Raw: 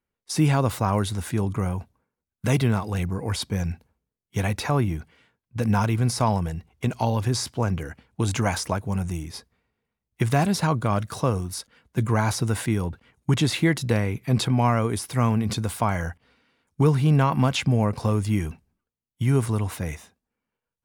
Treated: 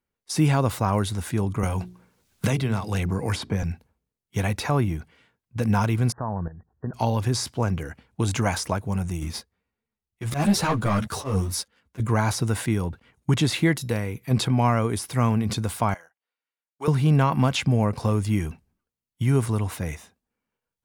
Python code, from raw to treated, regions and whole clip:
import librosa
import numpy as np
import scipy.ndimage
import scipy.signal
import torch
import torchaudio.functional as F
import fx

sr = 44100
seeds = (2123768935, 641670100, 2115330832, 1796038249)

y = fx.chain(x, sr, fx.high_shelf(hz=10000.0, db=-8.0),
    fx.hum_notches(base_hz=60, count=7),
    fx.band_squash(depth_pct=100), at=(1.63, 3.63))
y = fx.chain(y, sr, fx.brickwall_lowpass(high_hz=1900.0),
    fx.level_steps(step_db=14), at=(6.12, 6.94))
y = fx.chain(y, sr, fx.auto_swell(attack_ms=149.0),
    fx.leveller(passes=2),
    fx.ensemble(), at=(9.21, 12.0))
y = fx.chain(y, sr, fx.high_shelf(hz=9300.0, db=10.0),
    fx.comb_fb(f0_hz=480.0, decay_s=0.17, harmonics='all', damping=0.0, mix_pct=40), at=(13.76, 14.31))
y = fx.chain(y, sr, fx.highpass(hz=560.0, slope=12),
    fx.upward_expand(threshold_db=-42.0, expansion=2.5), at=(15.94, 16.88))